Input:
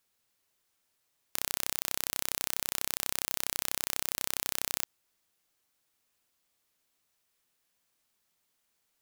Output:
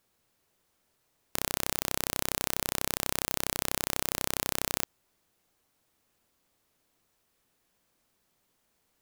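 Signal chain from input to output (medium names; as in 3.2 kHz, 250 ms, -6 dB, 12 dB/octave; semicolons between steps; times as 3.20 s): companded quantiser 8-bit; tilt shelf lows +5 dB, about 1.1 kHz; trim +5.5 dB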